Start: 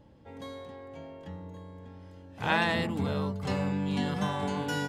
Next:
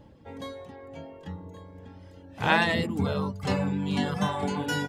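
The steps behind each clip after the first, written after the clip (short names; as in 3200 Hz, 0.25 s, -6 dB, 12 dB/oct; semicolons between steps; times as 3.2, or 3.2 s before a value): reverb removal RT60 0.89 s; gain +5 dB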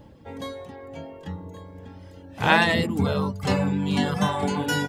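high shelf 9500 Hz +5 dB; gain +4 dB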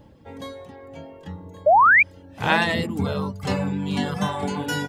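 painted sound rise, 1.66–2.03, 560–2500 Hz -12 dBFS; gain -1.5 dB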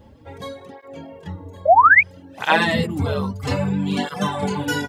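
tape flanging out of phase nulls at 0.61 Hz, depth 7 ms; gain +5.5 dB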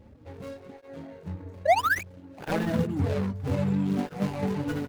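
median filter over 41 samples; gain -3.5 dB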